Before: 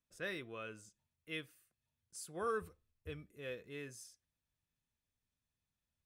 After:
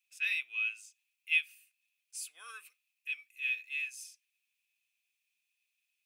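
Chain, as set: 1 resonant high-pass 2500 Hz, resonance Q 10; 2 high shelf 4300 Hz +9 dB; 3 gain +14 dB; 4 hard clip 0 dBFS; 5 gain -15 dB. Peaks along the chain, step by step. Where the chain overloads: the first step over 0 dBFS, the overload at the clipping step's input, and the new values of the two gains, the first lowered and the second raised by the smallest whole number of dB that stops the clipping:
-18.0, -15.5, -1.5, -1.5, -16.5 dBFS; no overload

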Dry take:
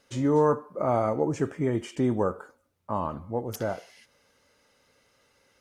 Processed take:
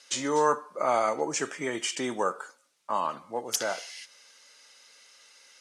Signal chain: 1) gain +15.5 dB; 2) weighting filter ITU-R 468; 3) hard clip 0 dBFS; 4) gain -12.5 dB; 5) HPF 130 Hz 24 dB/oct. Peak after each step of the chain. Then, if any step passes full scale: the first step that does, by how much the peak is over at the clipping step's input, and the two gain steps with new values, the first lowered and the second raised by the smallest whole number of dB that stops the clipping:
+4.5, +4.0, 0.0, -12.5, -11.5 dBFS; step 1, 4.0 dB; step 1 +11.5 dB, step 4 -8.5 dB

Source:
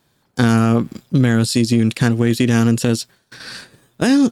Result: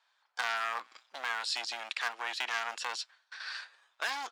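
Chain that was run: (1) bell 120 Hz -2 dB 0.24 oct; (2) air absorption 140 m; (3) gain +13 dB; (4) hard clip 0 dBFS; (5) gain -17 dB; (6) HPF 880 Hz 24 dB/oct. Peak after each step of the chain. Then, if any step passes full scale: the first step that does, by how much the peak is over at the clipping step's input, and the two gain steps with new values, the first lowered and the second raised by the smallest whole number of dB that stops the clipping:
-4.5, -5.0, +8.0, 0.0, -17.0, -16.0 dBFS; step 3, 8.0 dB; step 3 +5 dB, step 5 -9 dB

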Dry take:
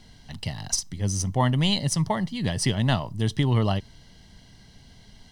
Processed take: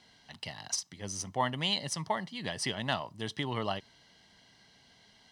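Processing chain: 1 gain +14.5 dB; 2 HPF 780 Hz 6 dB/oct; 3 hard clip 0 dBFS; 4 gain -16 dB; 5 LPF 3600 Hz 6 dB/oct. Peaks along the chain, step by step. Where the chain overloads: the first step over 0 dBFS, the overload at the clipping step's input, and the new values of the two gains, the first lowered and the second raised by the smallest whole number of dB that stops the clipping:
+5.0, +4.0, 0.0, -16.0, -16.0 dBFS; step 1, 4.0 dB; step 1 +10.5 dB, step 4 -12 dB

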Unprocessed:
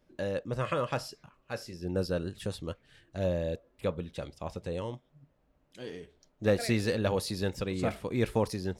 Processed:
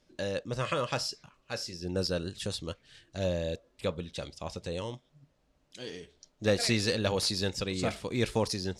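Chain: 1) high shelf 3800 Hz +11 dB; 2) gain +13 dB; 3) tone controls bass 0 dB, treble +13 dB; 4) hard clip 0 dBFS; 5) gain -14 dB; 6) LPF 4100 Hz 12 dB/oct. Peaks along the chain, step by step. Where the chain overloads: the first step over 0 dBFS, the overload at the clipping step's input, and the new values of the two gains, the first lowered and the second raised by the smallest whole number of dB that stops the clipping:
-12.5, +0.5, +7.0, 0.0, -14.0, -14.0 dBFS; step 2, 7.0 dB; step 2 +6 dB, step 5 -7 dB

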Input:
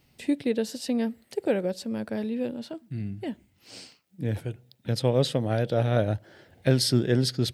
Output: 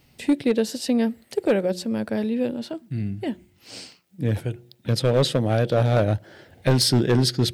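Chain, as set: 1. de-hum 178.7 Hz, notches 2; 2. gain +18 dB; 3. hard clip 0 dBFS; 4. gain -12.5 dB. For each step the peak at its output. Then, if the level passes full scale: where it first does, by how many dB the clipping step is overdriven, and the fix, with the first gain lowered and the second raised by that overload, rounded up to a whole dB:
-8.5, +9.5, 0.0, -12.5 dBFS; step 2, 9.5 dB; step 2 +8 dB, step 4 -2.5 dB

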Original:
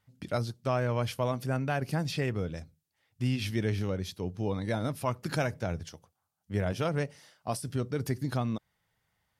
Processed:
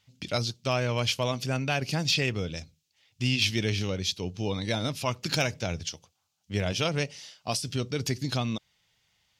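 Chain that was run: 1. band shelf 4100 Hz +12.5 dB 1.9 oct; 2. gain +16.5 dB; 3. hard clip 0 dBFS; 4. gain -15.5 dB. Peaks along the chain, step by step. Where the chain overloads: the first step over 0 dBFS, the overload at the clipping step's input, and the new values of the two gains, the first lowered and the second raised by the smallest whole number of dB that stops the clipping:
-8.0, +8.5, 0.0, -15.5 dBFS; step 2, 8.5 dB; step 2 +7.5 dB, step 4 -6.5 dB

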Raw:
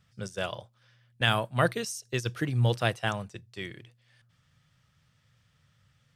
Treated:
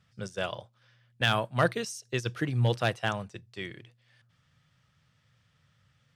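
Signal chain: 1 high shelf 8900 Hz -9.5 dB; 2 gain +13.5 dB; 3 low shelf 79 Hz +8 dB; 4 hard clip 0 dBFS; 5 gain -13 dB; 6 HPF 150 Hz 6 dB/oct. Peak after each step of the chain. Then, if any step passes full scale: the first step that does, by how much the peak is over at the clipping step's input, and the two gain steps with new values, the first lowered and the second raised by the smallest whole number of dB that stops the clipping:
-9.0, +4.5, +5.0, 0.0, -13.0, -11.0 dBFS; step 2, 5.0 dB; step 2 +8.5 dB, step 5 -8 dB

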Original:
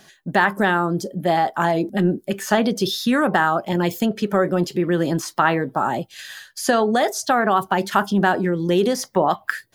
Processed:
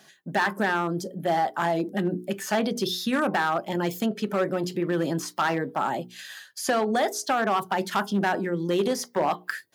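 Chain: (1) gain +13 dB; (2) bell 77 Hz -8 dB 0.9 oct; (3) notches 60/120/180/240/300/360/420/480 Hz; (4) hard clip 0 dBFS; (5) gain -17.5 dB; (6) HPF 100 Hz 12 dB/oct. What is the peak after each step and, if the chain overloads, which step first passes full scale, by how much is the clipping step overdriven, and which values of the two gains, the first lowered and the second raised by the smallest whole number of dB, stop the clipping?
+9.5, +9.5, +10.0, 0.0, -17.5, -13.5 dBFS; step 1, 10.0 dB; step 1 +3 dB, step 5 -7.5 dB

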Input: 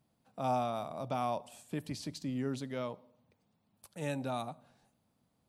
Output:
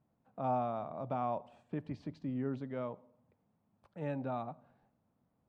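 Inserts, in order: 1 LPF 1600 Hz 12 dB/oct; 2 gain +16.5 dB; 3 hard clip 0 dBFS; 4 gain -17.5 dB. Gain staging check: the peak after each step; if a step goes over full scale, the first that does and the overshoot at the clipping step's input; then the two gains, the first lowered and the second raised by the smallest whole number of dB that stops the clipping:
-22.0, -5.5, -5.5, -23.0 dBFS; no overload

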